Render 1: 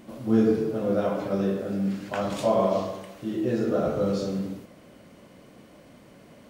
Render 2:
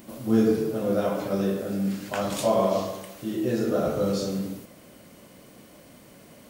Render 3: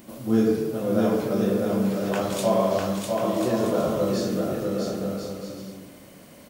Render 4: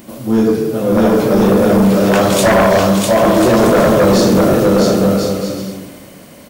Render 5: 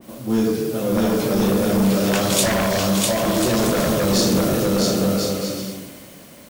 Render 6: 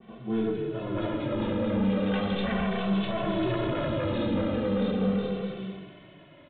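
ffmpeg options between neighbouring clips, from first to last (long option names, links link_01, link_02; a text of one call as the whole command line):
ffmpeg -i in.wav -af "aemphasis=mode=production:type=50kf" out.wav
ffmpeg -i in.wav -af "aecho=1:1:650|1040|1274|1414|1499:0.631|0.398|0.251|0.158|0.1" out.wav
ffmpeg -i in.wav -af "dynaudnorm=framelen=210:gausssize=11:maxgain=10dB,aeval=exprs='0.841*sin(PI/2*3.16*val(0)/0.841)':channel_layout=same,volume=-4.5dB" out.wav
ffmpeg -i in.wav -filter_complex "[0:a]acrossover=split=260|3000[link_01][link_02][link_03];[link_02]acompressor=threshold=-14dB:ratio=6[link_04];[link_01][link_04][link_03]amix=inputs=3:normalize=0,acrusher=bits=6:mix=0:aa=0.000001,adynamicequalizer=threshold=0.0178:dfrequency=1900:dqfactor=0.7:tfrequency=1900:tqfactor=0.7:attack=5:release=100:ratio=0.375:range=3:mode=boostabove:tftype=highshelf,volume=-6dB" out.wav
ffmpeg -i in.wav -filter_complex "[0:a]acrossover=split=390[link_01][link_02];[link_02]aeval=exprs='clip(val(0),-1,0.0398)':channel_layout=same[link_03];[link_01][link_03]amix=inputs=2:normalize=0,aresample=8000,aresample=44100,asplit=2[link_04][link_05];[link_05]adelay=2.2,afreqshift=-0.37[link_06];[link_04][link_06]amix=inputs=2:normalize=1,volume=-4.5dB" out.wav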